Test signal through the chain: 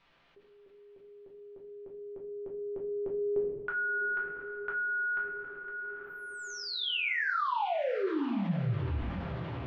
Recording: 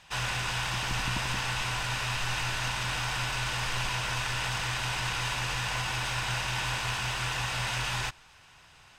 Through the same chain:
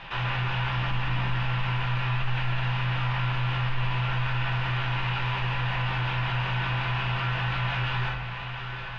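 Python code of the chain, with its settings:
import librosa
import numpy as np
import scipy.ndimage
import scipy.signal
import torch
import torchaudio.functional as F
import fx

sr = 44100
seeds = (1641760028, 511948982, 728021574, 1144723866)

p1 = scipy.signal.sosfilt(scipy.signal.butter(4, 3200.0, 'lowpass', fs=sr, output='sos'), x)
p2 = p1 + fx.echo_diffused(p1, sr, ms=765, feedback_pct=55, wet_db=-15.0, dry=0)
p3 = fx.room_shoebox(p2, sr, seeds[0], volume_m3=54.0, walls='mixed', distance_m=0.8)
p4 = fx.env_flatten(p3, sr, amount_pct=50)
y = p4 * 10.0 ** (-7.5 / 20.0)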